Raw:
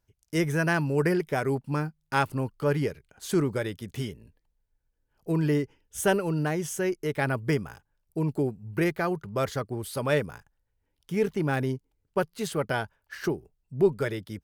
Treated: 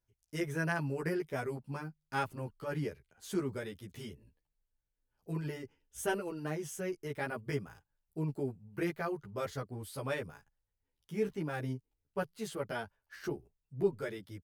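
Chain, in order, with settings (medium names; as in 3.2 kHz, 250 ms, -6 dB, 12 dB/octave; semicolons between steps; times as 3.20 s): endless flanger 11.5 ms -2.4 Hz; trim -6.5 dB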